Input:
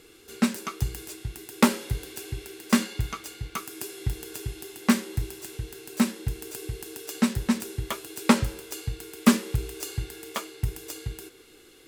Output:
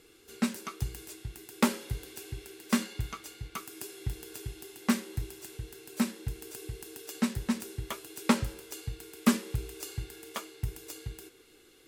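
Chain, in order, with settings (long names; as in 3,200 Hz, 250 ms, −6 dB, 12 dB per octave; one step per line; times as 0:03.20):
level −5.5 dB
MP3 80 kbit/s 44,100 Hz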